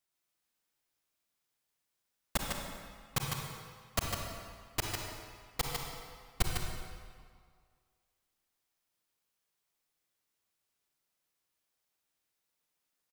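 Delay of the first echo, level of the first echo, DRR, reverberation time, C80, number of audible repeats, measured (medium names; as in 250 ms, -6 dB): 152 ms, -5.0 dB, -1.5 dB, 1.9 s, 0.5 dB, 1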